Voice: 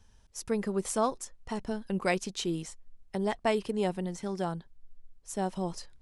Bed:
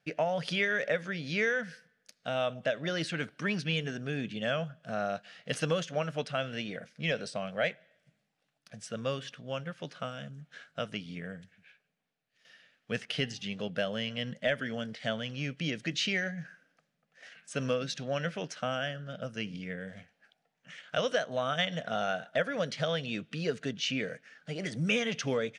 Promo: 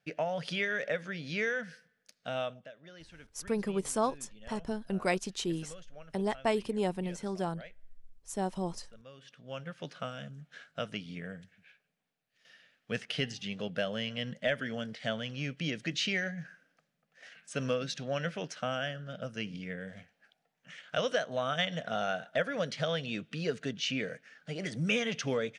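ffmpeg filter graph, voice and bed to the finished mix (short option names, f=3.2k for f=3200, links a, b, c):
-filter_complex "[0:a]adelay=3000,volume=-1.5dB[a];[1:a]volume=15.5dB,afade=t=out:st=2.39:d=0.29:silence=0.149624,afade=t=in:st=9.13:d=0.71:silence=0.11885[b];[a][b]amix=inputs=2:normalize=0"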